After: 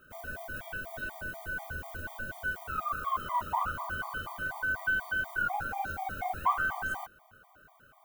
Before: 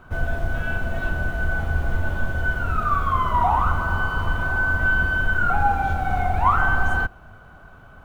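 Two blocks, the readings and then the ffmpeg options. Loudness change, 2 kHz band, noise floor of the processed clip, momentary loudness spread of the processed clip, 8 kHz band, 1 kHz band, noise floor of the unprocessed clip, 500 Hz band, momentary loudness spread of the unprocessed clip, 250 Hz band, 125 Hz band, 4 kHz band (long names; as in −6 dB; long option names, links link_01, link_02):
−11.0 dB, −10.0 dB, −61 dBFS, 10 LU, can't be measured, −11.0 dB, −46 dBFS, −12.5 dB, 7 LU, −16.0 dB, −22.0 dB, −8.0 dB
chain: -af "aemphasis=mode=production:type=bsi,afftfilt=real='re*gt(sin(2*PI*4.1*pts/sr)*(1-2*mod(floor(b*sr/1024/620),2)),0)':imag='im*gt(sin(2*PI*4.1*pts/sr)*(1-2*mod(floor(b*sr/1024/620),2)),0)':win_size=1024:overlap=0.75,volume=-8dB"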